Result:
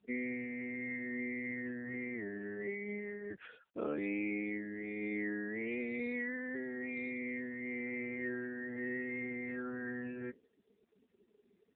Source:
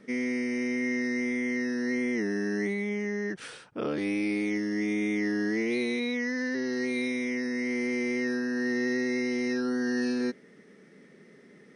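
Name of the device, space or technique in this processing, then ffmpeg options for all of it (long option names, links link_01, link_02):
mobile call with aggressive noise cancelling: -af "highpass=150,lowshelf=frequency=270:gain=-5,afftdn=noise_reduction=34:noise_floor=-43,volume=-4dB" -ar 8000 -c:a libopencore_amrnb -b:a 7950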